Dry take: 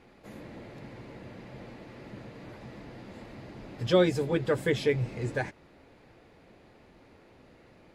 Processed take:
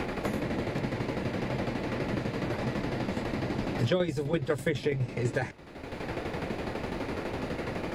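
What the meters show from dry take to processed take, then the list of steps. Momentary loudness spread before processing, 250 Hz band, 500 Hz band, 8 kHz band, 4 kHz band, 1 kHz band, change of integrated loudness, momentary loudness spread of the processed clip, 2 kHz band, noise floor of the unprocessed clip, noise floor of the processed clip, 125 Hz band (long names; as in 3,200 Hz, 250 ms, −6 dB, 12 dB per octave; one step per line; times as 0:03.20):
20 LU, +3.5 dB, −0.5 dB, +2.5 dB, +0.5 dB, +5.5 dB, −4.0 dB, 6 LU, +2.5 dB, −58 dBFS, −42 dBFS, +3.5 dB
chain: shaped tremolo saw down 12 Hz, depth 65%
multiband upward and downward compressor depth 100%
level +8.5 dB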